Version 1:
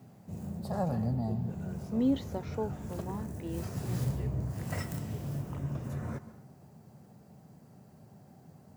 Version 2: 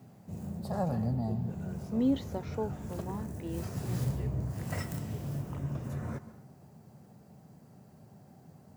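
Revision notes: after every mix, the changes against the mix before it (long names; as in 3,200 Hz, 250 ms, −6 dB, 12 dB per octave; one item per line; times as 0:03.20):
nothing changed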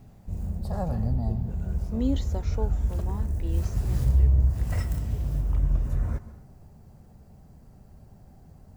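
speech: remove high-frequency loss of the air 160 metres
master: remove high-pass filter 120 Hz 24 dB per octave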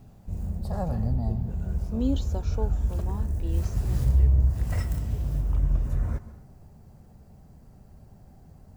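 speech: add Butterworth band-reject 2,000 Hz, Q 3.6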